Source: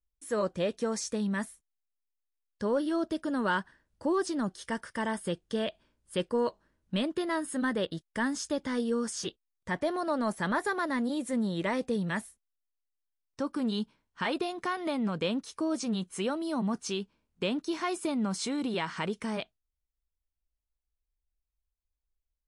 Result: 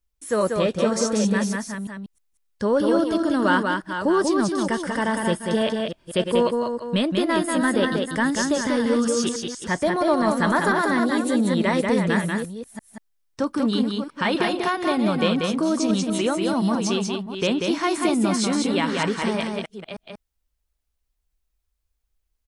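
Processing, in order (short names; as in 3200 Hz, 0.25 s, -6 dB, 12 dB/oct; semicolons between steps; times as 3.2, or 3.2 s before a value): reverse delay 0.312 s, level -8 dB; echo 0.189 s -4 dB; gain +8 dB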